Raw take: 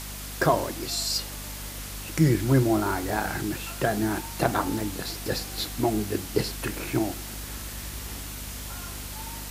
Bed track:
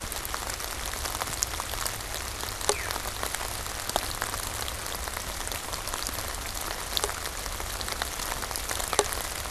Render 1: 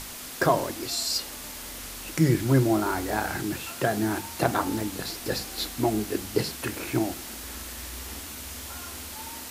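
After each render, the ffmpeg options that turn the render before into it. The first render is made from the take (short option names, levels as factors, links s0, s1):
-af "bandreject=f=50:t=h:w=6,bandreject=f=100:t=h:w=6,bandreject=f=150:t=h:w=6,bandreject=f=200:t=h:w=6"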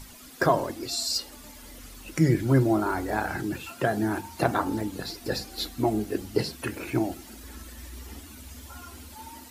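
-af "afftdn=nr=12:nf=-39"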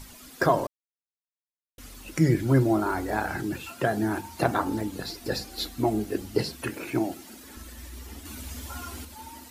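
-filter_complex "[0:a]asettb=1/sr,asplit=3[s0][s1][s2];[s0]atrim=end=6.694[s3];[s1]atrim=start=6.69:end=7.57,asetpts=PTS-STARTPTS,afade=t=in:d=0.004:c=qsin,afade=t=out:st=0.876:d=0.004:c=qsin,highpass=130[s4];[s2]atrim=start=7.566[s5];[s3][s4]acrossfade=d=0.004:c1=hsin:c2=qsin[s6];[s6][s5]acrossfade=d=0.004:c1=qsin:c2=hsin,asettb=1/sr,asplit=3[s7][s8][s9];[s7]atrim=end=8.254[s10];[s8]atrim=start=8.25:end=9.05,asetpts=PTS-STARTPTS,afade=t=in:d=0.004:c=qsin,afade=t=out:st=0.796:d=0.004:c=qsin,acontrast=36[s11];[s9]atrim=start=9.046[s12];[s10][s11]acrossfade=d=0.004:c1=hsin:c2=qsin[s13];[s13][s12]acrossfade=d=0.004:c1=qsin:c2=hsin,asplit=3[s14][s15][s16];[s14]atrim=end=0.67,asetpts=PTS-STARTPTS,afade=t=out:st=0.666:d=0.004:c=hsin[s17];[s15]atrim=start=0.67:end=1.78,asetpts=PTS-STARTPTS,volume=0[s18];[s16]atrim=start=1.78,asetpts=PTS-STARTPTS,afade=t=in:d=0.004:c=hsin[s19];[s17][s18][s19]concat=n=3:v=0:a=1"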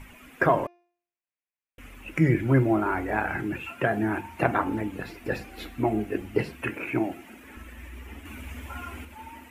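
-af "highshelf=f=3300:t=q:w=3:g=-10,bandreject=f=349.7:t=h:w=4,bandreject=f=699.4:t=h:w=4,bandreject=f=1049.1:t=h:w=4,bandreject=f=1398.8:t=h:w=4,bandreject=f=1748.5:t=h:w=4,bandreject=f=2098.2:t=h:w=4,bandreject=f=2447.9:t=h:w=4,bandreject=f=2797.6:t=h:w=4,bandreject=f=3147.3:t=h:w=4,bandreject=f=3497:t=h:w=4,bandreject=f=3846.7:t=h:w=4,bandreject=f=4196.4:t=h:w=4,bandreject=f=4546.1:t=h:w=4,bandreject=f=4895.8:t=h:w=4,bandreject=f=5245.5:t=h:w=4,bandreject=f=5595.2:t=h:w=4,bandreject=f=5944.9:t=h:w=4,bandreject=f=6294.6:t=h:w=4"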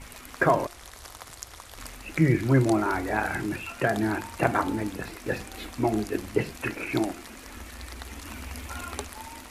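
-filter_complex "[1:a]volume=0.237[s0];[0:a][s0]amix=inputs=2:normalize=0"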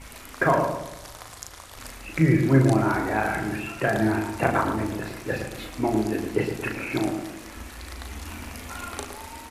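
-filter_complex "[0:a]asplit=2[s0][s1];[s1]adelay=37,volume=0.562[s2];[s0][s2]amix=inputs=2:normalize=0,asplit=2[s3][s4];[s4]adelay=113,lowpass=f=1500:p=1,volume=0.531,asplit=2[s5][s6];[s6]adelay=113,lowpass=f=1500:p=1,volume=0.47,asplit=2[s7][s8];[s8]adelay=113,lowpass=f=1500:p=1,volume=0.47,asplit=2[s9][s10];[s10]adelay=113,lowpass=f=1500:p=1,volume=0.47,asplit=2[s11][s12];[s12]adelay=113,lowpass=f=1500:p=1,volume=0.47,asplit=2[s13][s14];[s14]adelay=113,lowpass=f=1500:p=1,volume=0.47[s15];[s3][s5][s7][s9][s11][s13][s15]amix=inputs=7:normalize=0"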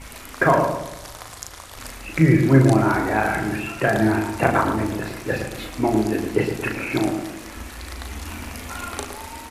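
-af "volume=1.58"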